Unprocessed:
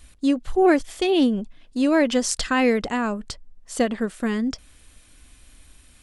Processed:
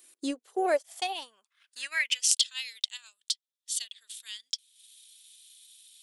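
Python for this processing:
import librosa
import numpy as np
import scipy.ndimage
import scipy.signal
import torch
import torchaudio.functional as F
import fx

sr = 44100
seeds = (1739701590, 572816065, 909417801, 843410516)

y = fx.filter_sweep_highpass(x, sr, from_hz=350.0, to_hz=3500.0, start_s=0.28, end_s=2.48, q=5.1)
y = fx.riaa(y, sr, side='recording')
y = fx.transient(y, sr, attack_db=4, sustain_db=-9)
y = F.gain(torch.from_numpy(y), -12.5).numpy()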